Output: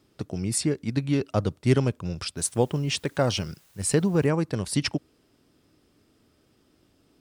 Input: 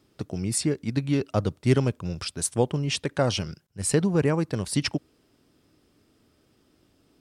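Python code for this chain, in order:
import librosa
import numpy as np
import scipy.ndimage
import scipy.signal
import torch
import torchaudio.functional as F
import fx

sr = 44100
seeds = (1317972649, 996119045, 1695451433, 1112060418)

y = fx.quant_dither(x, sr, seeds[0], bits=10, dither='triangular', at=(2.36, 4.26), fade=0.02)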